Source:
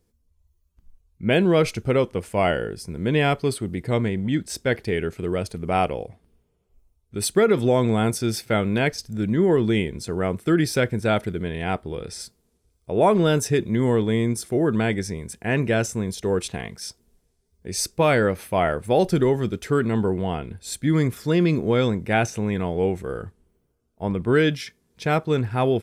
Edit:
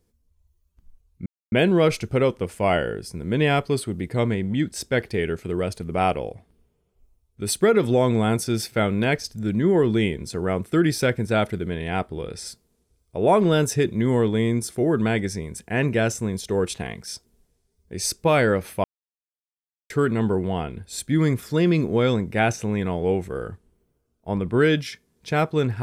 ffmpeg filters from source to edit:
ffmpeg -i in.wav -filter_complex "[0:a]asplit=4[link_01][link_02][link_03][link_04];[link_01]atrim=end=1.26,asetpts=PTS-STARTPTS,afade=type=out:start_time=1.256:duration=0.004:curve=hsin,apad=pad_dur=0.26[link_05];[link_02]atrim=start=1.26:end=18.58,asetpts=PTS-STARTPTS,afade=type=in:duration=0.004:curve=hsin,afade=type=out:start_time=17.316:duration=0.004:curve=hsin[link_06];[link_03]atrim=start=18.58:end=19.64,asetpts=PTS-STARTPTS,volume=0[link_07];[link_04]atrim=start=19.64,asetpts=PTS-STARTPTS,afade=type=in:duration=0.004:curve=hsin[link_08];[link_05][link_06][link_07][link_08]concat=n=4:v=0:a=1" out.wav

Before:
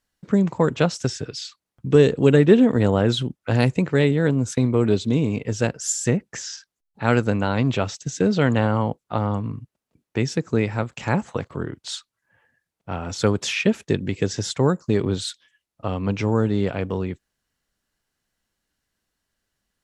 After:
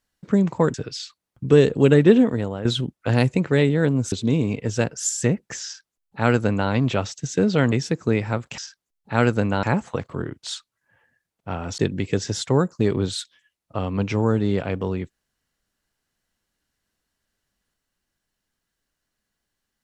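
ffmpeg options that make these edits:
ffmpeg -i in.wav -filter_complex "[0:a]asplit=8[link_01][link_02][link_03][link_04][link_05][link_06][link_07][link_08];[link_01]atrim=end=0.742[link_09];[link_02]atrim=start=1.158:end=3.07,asetpts=PTS-STARTPTS,afade=type=out:start_time=1.462:duration=0.45:curve=qua:silence=0.251189[link_10];[link_03]atrim=start=3.07:end=4.542,asetpts=PTS-STARTPTS,afade=type=in:duration=0.004:curve=hsin:silence=0.251189[link_11];[link_04]atrim=start=4.948:end=8.552[link_12];[link_05]atrim=start=10.178:end=11.042[link_13];[link_06]atrim=start=6.478:end=7.532[link_14];[link_07]atrim=start=11.038:end=13.192[link_15];[link_08]atrim=start=13.868[link_16];[link_10][link_11]concat=n=2:v=0:a=1[link_17];[link_09][link_17]acrossfade=duration=0.004:curve1=hsin:curve2=hsin[link_18];[link_18][link_12]acrossfade=duration=0.004:curve1=hsin:curve2=hsin[link_19];[link_19][link_13]acrossfade=duration=0.004:curve1=hsin:curve2=hsin[link_20];[link_20][link_14]acrossfade=duration=0.004:curve1=hsin:curve2=hsin[link_21];[link_21][link_15]acrossfade=duration=0.004:curve1=hsin:curve2=hsin[link_22];[link_22][link_16]acrossfade=duration=0.004:curve1=hsin:curve2=hsin" out.wav

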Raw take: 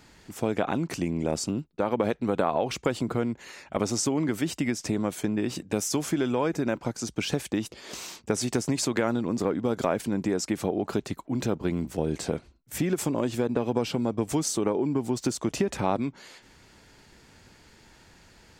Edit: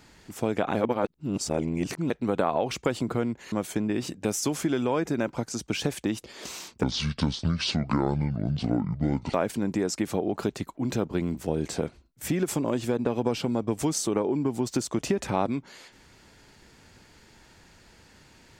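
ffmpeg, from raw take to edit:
ffmpeg -i in.wav -filter_complex "[0:a]asplit=6[link_01][link_02][link_03][link_04][link_05][link_06];[link_01]atrim=end=0.752[link_07];[link_02]atrim=start=0.748:end=2.102,asetpts=PTS-STARTPTS,areverse[link_08];[link_03]atrim=start=2.098:end=3.522[link_09];[link_04]atrim=start=4.998:end=8.314[link_10];[link_05]atrim=start=8.31:end=9.84,asetpts=PTS-STARTPTS,asetrate=26901,aresample=44100,atrim=end_sample=110611,asetpts=PTS-STARTPTS[link_11];[link_06]atrim=start=9.836[link_12];[link_07][link_08]acrossfade=duration=0.004:curve1=hsin:curve2=hsin[link_13];[link_13][link_09]acrossfade=duration=0.004:curve1=hsin:curve2=hsin[link_14];[link_14][link_10]acrossfade=duration=0.004:curve1=hsin:curve2=hsin[link_15];[link_15][link_11]acrossfade=duration=0.004:curve1=hsin:curve2=hsin[link_16];[link_16][link_12]acrossfade=duration=0.004:curve1=hsin:curve2=hsin" out.wav

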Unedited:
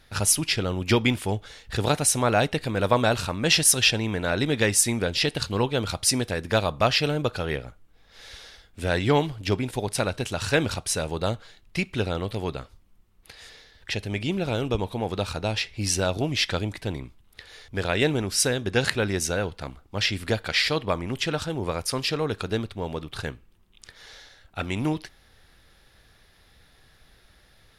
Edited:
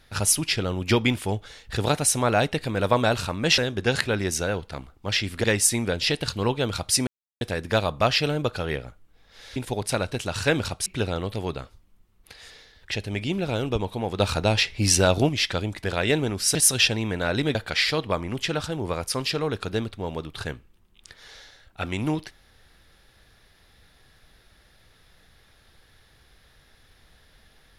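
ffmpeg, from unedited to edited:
ffmpeg -i in.wav -filter_complex "[0:a]asplit=11[link_01][link_02][link_03][link_04][link_05][link_06][link_07][link_08][link_09][link_10][link_11];[link_01]atrim=end=3.582[link_12];[link_02]atrim=start=18.468:end=20.332[link_13];[link_03]atrim=start=4.578:end=6.21,asetpts=PTS-STARTPTS,afade=type=out:start_time=1.628:duration=0.004:curve=hsin,apad=pad_dur=0.34[link_14];[link_04]atrim=start=6.21:end=8.362,asetpts=PTS-STARTPTS,afade=type=in:duration=0.004:curve=hsin[link_15];[link_05]atrim=start=9.618:end=10.922[link_16];[link_06]atrim=start=11.848:end=15.192[link_17];[link_07]atrim=start=15.188:end=16.282,asetpts=PTS-STARTPTS,volume=5.5dB[link_18];[link_08]atrim=start=16.278:end=16.832[link_19];[link_09]atrim=start=17.758:end=18.472[link_20];[link_10]atrim=start=3.578:end=4.582[link_21];[link_11]atrim=start=20.328[link_22];[link_12][link_13]acrossfade=duration=0.004:curve1=hsin:curve2=hsin[link_23];[link_14][link_15]concat=n=2:v=0:a=1[link_24];[link_23][link_24]acrossfade=duration=0.004:curve1=hsin:curve2=hsin[link_25];[link_25][link_16]acrossfade=duration=0.004:curve1=hsin:curve2=hsin[link_26];[link_26][link_17]acrossfade=duration=0.004:curve1=hsin:curve2=hsin[link_27];[link_27][link_18]acrossfade=duration=0.004:curve1=hsin:curve2=hsin[link_28];[link_28][link_19]acrossfade=duration=0.004:curve1=hsin:curve2=hsin[link_29];[link_29][link_20]acrossfade=duration=0.004:curve1=hsin:curve2=hsin[link_30];[link_30][link_21]acrossfade=duration=0.004:curve1=hsin:curve2=hsin[link_31];[link_31][link_22]acrossfade=duration=0.004:curve1=hsin:curve2=hsin" out.wav

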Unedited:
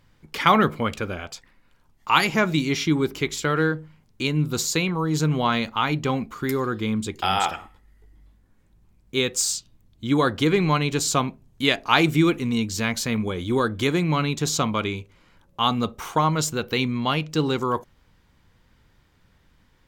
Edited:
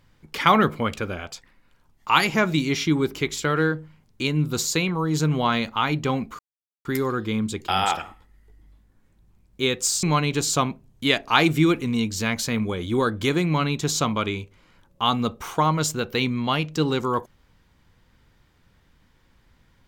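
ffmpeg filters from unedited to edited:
ffmpeg -i in.wav -filter_complex "[0:a]asplit=3[link_01][link_02][link_03];[link_01]atrim=end=6.39,asetpts=PTS-STARTPTS,afade=type=out:start_time=6.386:duration=0.004:curve=hsin,apad=pad_dur=0.46[link_04];[link_02]atrim=start=6.39:end=9.572,asetpts=PTS-STARTPTS,afade=type=in:duration=0.004:curve=hsin[link_05];[link_03]atrim=start=10.608[link_06];[link_04][link_05]concat=n=2:v=0:a=1[link_07];[link_07][link_06]acrossfade=duration=0.004:curve1=hsin:curve2=hsin" out.wav

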